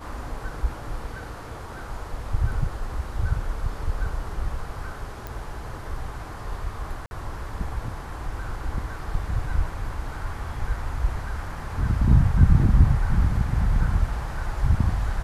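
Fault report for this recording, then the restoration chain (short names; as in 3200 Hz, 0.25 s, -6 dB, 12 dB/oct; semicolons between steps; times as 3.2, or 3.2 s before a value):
5.27 pop
7.06–7.11 gap 51 ms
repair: de-click; interpolate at 7.06, 51 ms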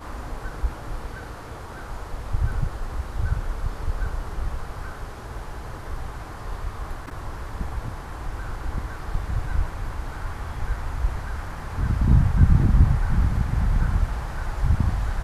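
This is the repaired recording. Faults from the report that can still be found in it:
none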